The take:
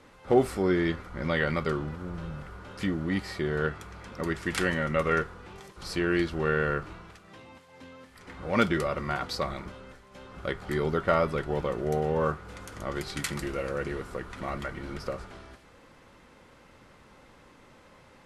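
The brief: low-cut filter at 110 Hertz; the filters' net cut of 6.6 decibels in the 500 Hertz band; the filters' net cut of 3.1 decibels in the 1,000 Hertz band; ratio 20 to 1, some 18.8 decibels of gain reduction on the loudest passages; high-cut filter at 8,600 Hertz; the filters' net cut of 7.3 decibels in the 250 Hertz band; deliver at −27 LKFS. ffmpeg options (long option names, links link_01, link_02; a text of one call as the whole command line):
ffmpeg -i in.wav -af "highpass=110,lowpass=8600,equalizer=frequency=250:width_type=o:gain=-9,equalizer=frequency=500:width_type=o:gain=-4.5,equalizer=frequency=1000:width_type=o:gain=-3,acompressor=threshold=-41dB:ratio=20,volume=20dB" out.wav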